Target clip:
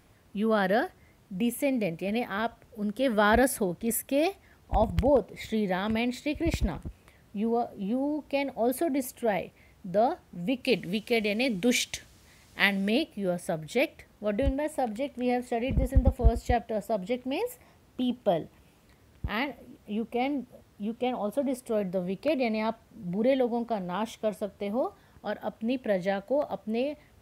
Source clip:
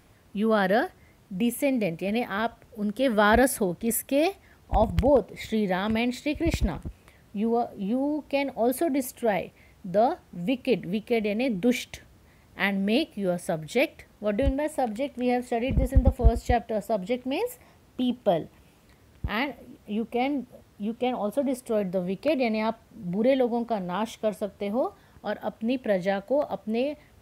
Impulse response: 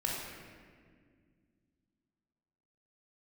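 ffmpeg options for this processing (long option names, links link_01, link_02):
-filter_complex "[0:a]asplit=3[link_01][link_02][link_03];[link_01]afade=type=out:start_time=10.63:duration=0.02[link_04];[link_02]equalizer=frequency=6200:width=0.38:gain=11.5,afade=type=in:start_time=10.63:duration=0.02,afade=type=out:start_time=12.89:duration=0.02[link_05];[link_03]afade=type=in:start_time=12.89:duration=0.02[link_06];[link_04][link_05][link_06]amix=inputs=3:normalize=0,volume=-2.5dB"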